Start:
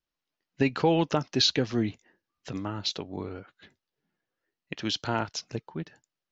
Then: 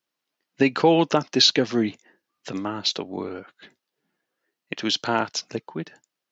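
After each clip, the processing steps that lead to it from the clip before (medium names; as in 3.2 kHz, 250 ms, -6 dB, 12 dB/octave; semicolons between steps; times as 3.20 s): high-pass 200 Hz 12 dB/octave; trim +6.5 dB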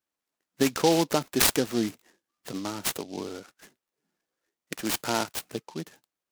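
delay time shaken by noise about 4.1 kHz, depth 0.08 ms; trim -4.5 dB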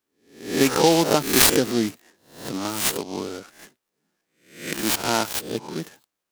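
reverse spectral sustain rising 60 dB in 0.49 s; trim +4 dB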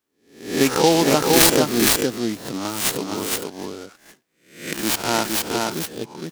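delay 464 ms -3 dB; trim +1 dB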